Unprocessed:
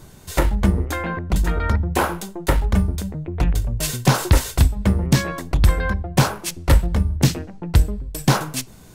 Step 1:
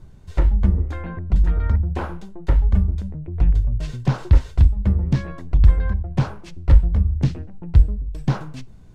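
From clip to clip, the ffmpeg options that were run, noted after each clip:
ffmpeg -i in.wav -filter_complex "[0:a]aemphasis=mode=reproduction:type=bsi,acrossover=split=6800[link_01][link_02];[link_02]acompressor=threshold=-52dB:ratio=4:attack=1:release=60[link_03];[link_01][link_03]amix=inputs=2:normalize=0,volume=-10.5dB" out.wav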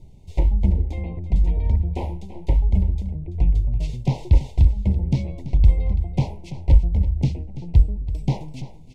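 ffmpeg -i in.wav -af "asuperstop=centerf=1400:order=12:qfactor=1.3,aecho=1:1:334:0.2,volume=-1.5dB" out.wav

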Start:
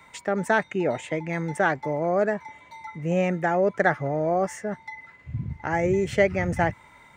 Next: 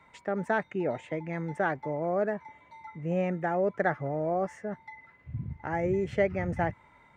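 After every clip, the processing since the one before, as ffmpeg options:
ffmpeg -i in.wav -af "lowpass=frequency=1800:poles=1,volume=-5dB" out.wav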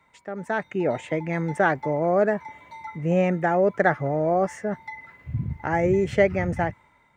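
ffmpeg -i in.wav -af "dynaudnorm=framelen=120:gausssize=11:maxgain=12.5dB,highshelf=frequency=4800:gain=7,volume=-4dB" out.wav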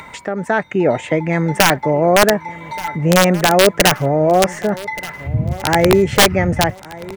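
ffmpeg -i in.wav -filter_complex "[0:a]asplit=2[link_01][link_02];[link_02]acompressor=mode=upward:threshold=-22dB:ratio=2.5,volume=-1dB[link_03];[link_01][link_03]amix=inputs=2:normalize=0,aeval=exprs='(mod(2.11*val(0)+1,2)-1)/2.11':channel_layout=same,aecho=1:1:1178|2356|3534:0.112|0.0426|0.0162,volume=3.5dB" out.wav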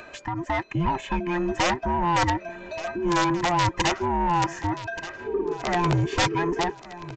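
ffmpeg -i in.wav -af "afftfilt=real='real(if(between(b,1,1008),(2*floor((b-1)/24)+1)*24-b,b),0)':imag='imag(if(between(b,1,1008),(2*floor((b-1)/24)+1)*24-b,b),0)*if(between(b,1,1008),-1,1)':win_size=2048:overlap=0.75,aresample=16000,asoftclip=type=tanh:threshold=-10dB,aresample=44100,volume=-7dB" out.wav

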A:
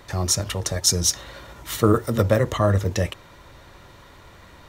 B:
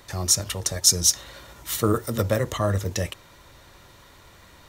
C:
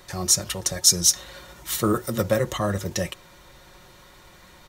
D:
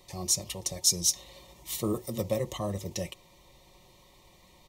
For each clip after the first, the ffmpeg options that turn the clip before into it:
ffmpeg -i in.wav -af "highshelf=frequency=4000:gain=9,volume=-4.5dB" out.wav
ffmpeg -i in.wav -af "aecho=1:1:5.5:0.48" out.wav
ffmpeg -i in.wav -af "asuperstop=centerf=1500:order=4:qfactor=1.7,volume=-7.5dB" out.wav

